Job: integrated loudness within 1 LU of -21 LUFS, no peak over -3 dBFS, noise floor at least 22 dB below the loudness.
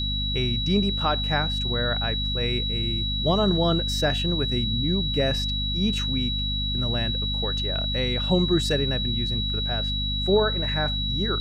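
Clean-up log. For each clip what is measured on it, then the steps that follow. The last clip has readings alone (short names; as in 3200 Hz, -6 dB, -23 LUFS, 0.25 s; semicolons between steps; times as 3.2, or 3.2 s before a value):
hum 50 Hz; harmonics up to 250 Hz; hum level -26 dBFS; steady tone 3900 Hz; tone level -27 dBFS; loudness -24.0 LUFS; peak -9.5 dBFS; loudness target -21.0 LUFS
-> de-hum 50 Hz, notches 5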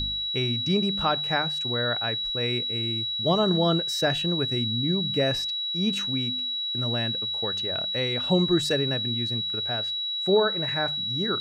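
hum none; steady tone 3900 Hz; tone level -27 dBFS
-> notch 3900 Hz, Q 30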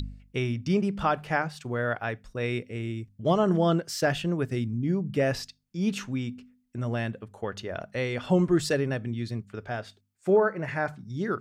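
steady tone none; loudness -28.5 LUFS; peak -12.0 dBFS; loudness target -21.0 LUFS
-> gain +7.5 dB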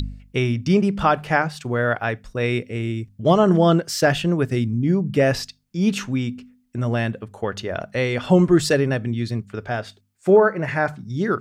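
loudness -21.0 LUFS; peak -4.5 dBFS; noise floor -60 dBFS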